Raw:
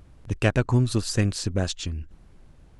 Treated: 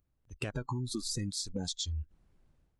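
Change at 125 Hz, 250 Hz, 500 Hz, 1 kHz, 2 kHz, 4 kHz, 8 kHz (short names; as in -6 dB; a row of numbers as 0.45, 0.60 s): -14.5, -12.5, -15.5, -10.5, -15.0, -4.5, -4.5 dB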